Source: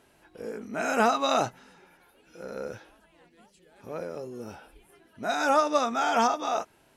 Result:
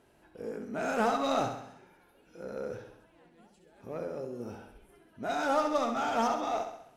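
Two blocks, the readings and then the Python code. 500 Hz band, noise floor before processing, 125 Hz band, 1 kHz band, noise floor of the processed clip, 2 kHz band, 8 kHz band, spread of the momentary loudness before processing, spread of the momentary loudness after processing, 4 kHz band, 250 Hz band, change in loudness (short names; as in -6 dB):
-3.5 dB, -63 dBFS, -1.0 dB, -5.0 dB, -64 dBFS, -6.0 dB, -8.0 dB, 18 LU, 16 LU, -7.0 dB, -2.0 dB, -5.0 dB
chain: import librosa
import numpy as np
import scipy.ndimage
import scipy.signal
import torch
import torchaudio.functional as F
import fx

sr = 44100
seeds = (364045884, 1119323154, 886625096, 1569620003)

p1 = fx.tilt_shelf(x, sr, db=3.5, hz=1100.0)
p2 = 10.0 ** (-26.0 / 20.0) * (np.abs((p1 / 10.0 ** (-26.0 / 20.0) + 3.0) % 4.0 - 2.0) - 1.0)
p3 = p1 + (p2 * librosa.db_to_amplitude(-9.0))
p4 = fx.echo_feedback(p3, sr, ms=66, feedback_pct=53, wet_db=-7.5)
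y = p4 * librosa.db_to_amplitude(-7.0)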